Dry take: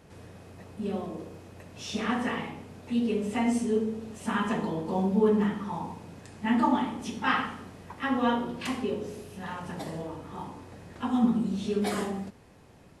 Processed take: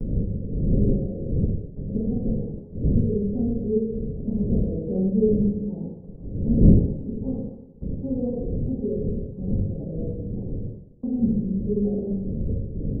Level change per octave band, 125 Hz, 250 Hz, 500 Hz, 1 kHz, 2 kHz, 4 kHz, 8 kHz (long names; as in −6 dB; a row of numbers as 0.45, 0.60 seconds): +14.0 dB, +4.5 dB, +3.5 dB, below −20 dB, below −40 dB, below −40 dB, below −35 dB